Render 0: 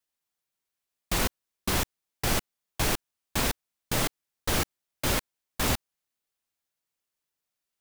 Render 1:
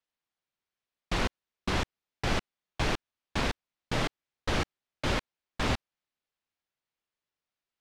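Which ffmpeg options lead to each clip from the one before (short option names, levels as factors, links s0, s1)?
-af "lowpass=4100,volume=0.891"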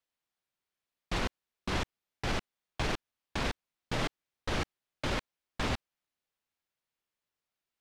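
-af "alimiter=limit=0.0794:level=0:latency=1:release=35"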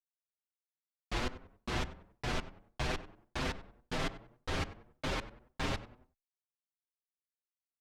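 -filter_complex "[0:a]asplit=2[s0][s1];[s1]adelay=95,lowpass=f=1700:p=1,volume=0.224,asplit=2[s2][s3];[s3]adelay=95,lowpass=f=1700:p=1,volume=0.41,asplit=2[s4][s5];[s5]adelay=95,lowpass=f=1700:p=1,volume=0.41,asplit=2[s6][s7];[s7]adelay=95,lowpass=f=1700:p=1,volume=0.41[s8];[s0][s2][s4][s6][s8]amix=inputs=5:normalize=0,agate=range=0.0224:threshold=0.00126:ratio=3:detection=peak,asplit=2[s9][s10];[s10]adelay=6.8,afreqshift=1.9[s11];[s9][s11]amix=inputs=2:normalize=1"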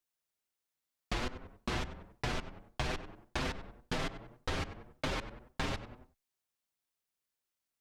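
-af "acompressor=threshold=0.0112:ratio=6,volume=2.24"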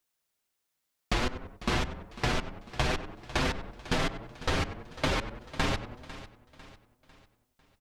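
-af "aecho=1:1:499|998|1497|1996:0.158|0.0697|0.0307|0.0135,volume=2.24"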